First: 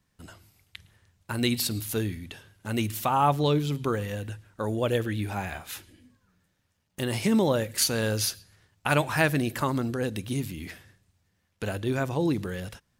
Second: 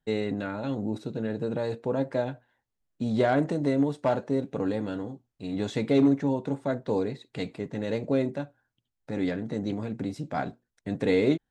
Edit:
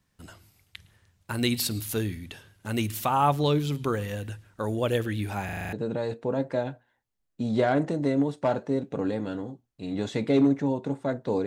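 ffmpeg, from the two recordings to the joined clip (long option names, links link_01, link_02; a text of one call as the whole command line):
ffmpeg -i cue0.wav -i cue1.wav -filter_complex "[0:a]apad=whole_dur=11.46,atrim=end=11.46,asplit=7[link_01][link_02][link_03][link_04][link_05][link_06][link_07];[link_01]atrim=end=5.492[link_08];[link_02]atrim=start=5.448:end=5.492[link_09];[link_03]atrim=start=5.448:end=5.492[link_10];[link_04]atrim=start=5.448:end=5.492[link_11];[link_05]atrim=start=5.448:end=5.492[link_12];[link_06]atrim=start=5.448:end=5.492[link_13];[link_07]atrim=start=5.448:end=5.492[link_14];[1:a]atrim=start=1.338:end=7.07[link_15];[link_08][link_09]acrossfade=duration=0.004:curve1=hsin:curve2=hsin[link_16];[link_16][link_10]acrossfade=duration=0.004:curve1=hsin:curve2=hsin[link_17];[link_17][link_11]acrossfade=duration=0.004:curve1=hsin:curve2=hsin[link_18];[link_18][link_12]acrossfade=duration=0.004:curve1=hsin:curve2=hsin[link_19];[link_19][link_13]acrossfade=duration=0.004:curve1=hsin:curve2=hsin[link_20];[link_20][link_14]acrossfade=duration=0.004:curve1=hsin:curve2=hsin[link_21];[link_21][link_15]acrossfade=duration=0.004:curve1=hsin:curve2=hsin" out.wav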